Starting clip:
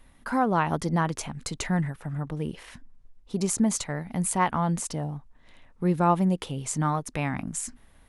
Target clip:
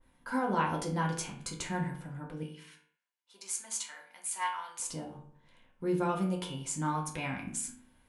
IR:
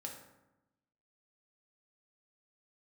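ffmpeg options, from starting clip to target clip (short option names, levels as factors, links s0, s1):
-filter_complex "[0:a]asettb=1/sr,asplit=3[s0][s1][s2];[s0]atrim=end=2.434[s3];[s1]atrim=start=2.43:end=4.8,asetpts=PTS-STARTPTS,afade=t=in:d=0.004:c=qsin,afade=t=out:st=2.366:d=0.004:c=qsin,highpass=1400[s4];[s2]atrim=start=4.796[s5];[s3][s4]acrossfade=d=0.004:c1=hsin:c2=qsin[s6];[s6][s5]acrossfade=d=0.004:c1=qsin:c2=hsin[s7];[1:a]atrim=start_sample=2205,asetrate=79380,aresample=44100[s8];[s7][s8]afir=irnorm=-1:irlink=0,adynamicequalizer=threshold=0.00355:dfrequency=2100:dqfactor=0.7:tfrequency=2100:tqfactor=0.7:attack=5:release=100:ratio=0.375:range=3.5:mode=boostabove:tftype=highshelf"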